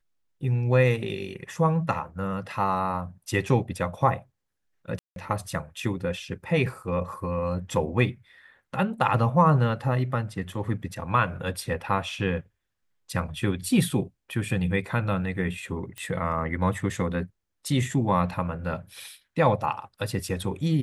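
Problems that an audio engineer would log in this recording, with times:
4.99–5.16 s: dropout 172 ms
15.98 s: pop -21 dBFS

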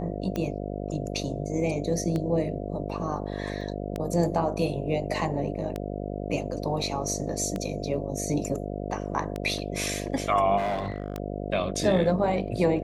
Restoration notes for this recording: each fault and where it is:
buzz 50 Hz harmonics 14 -33 dBFS
tick 33 1/3 rpm -17 dBFS
3.61 s: dropout 2.1 ms
10.57–11.20 s: clipped -24.5 dBFS

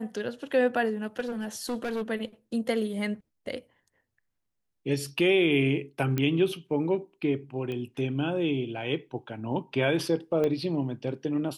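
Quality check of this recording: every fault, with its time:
1.19–2.02 s: clipped -27 dBFS
6.18 s: pop -14 dBFS
7.72 s: pop -24 dBFS
10.44 s: pop -17 dBFS

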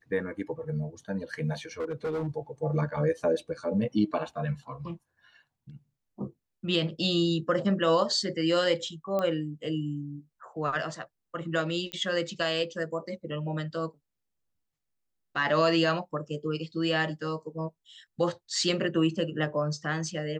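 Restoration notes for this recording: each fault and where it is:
1.80–2.28 s: clipped -27.5 dBFS
9.19 s: pop -18 dBFS
11.92 s: pop -21 dBFS

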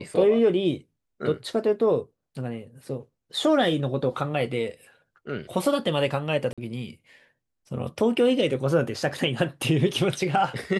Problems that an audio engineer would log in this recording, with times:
6.53–6.58 s: dropout 46 ms

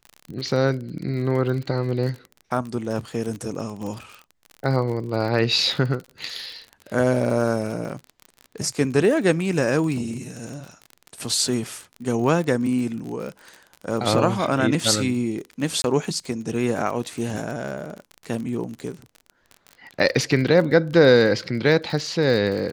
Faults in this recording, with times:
crackle 41 per s -29 dBFS
15.82–15.84 s: dropout 21 ms

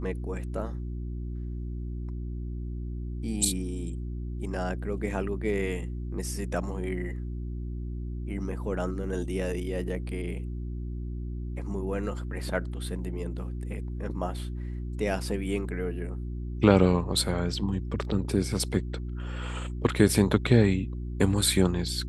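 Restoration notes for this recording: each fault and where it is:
hum 60 Hz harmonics 6 -34 dBFS

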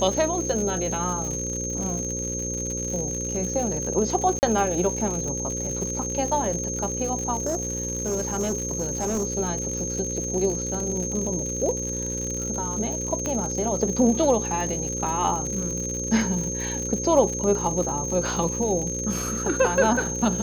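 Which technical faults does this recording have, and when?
buzz 60 Hz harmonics 9 -32 dBFS
crackle 110 per s -29 dBFS
whine 6.4 kHz -29 dBFS
4.39–4.43 s: dropout 39 ms
7.35–9.27 s: clipped -21 dBFS
13.26 s: pop -14 dBFS

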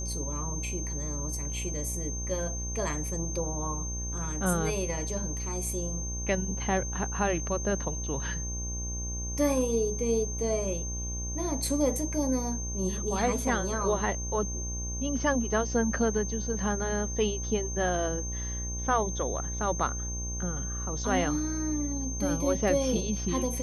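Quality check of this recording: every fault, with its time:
buzz 60 Hz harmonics 19 -35 dBFS
whine 6.3 kHz -36 dBFS

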